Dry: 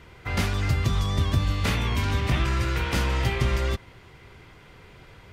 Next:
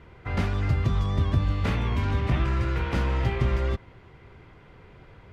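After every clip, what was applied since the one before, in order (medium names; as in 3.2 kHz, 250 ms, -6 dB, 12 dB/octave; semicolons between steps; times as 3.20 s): low-pass 1.4 kHz 6 dB/octave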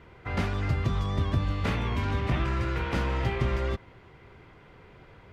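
bass shelf 150 Hz -5 dB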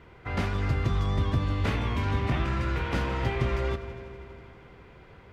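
multi-head delay 81 ms, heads first and second, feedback 75%, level -20 dB; on a send at -14 dB: reverberation RT60 2.9 s, pre-delay 3 ms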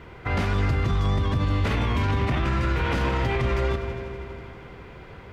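peak limiter -23.5 dBFS, peak gain reduction 10 dB; trim +8 dB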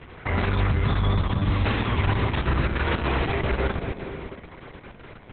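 hum notches 60/120/180/240/300/360/420/480/540/600 Hz; trim +1.5 dB; Opus 6 kbps 48 kHz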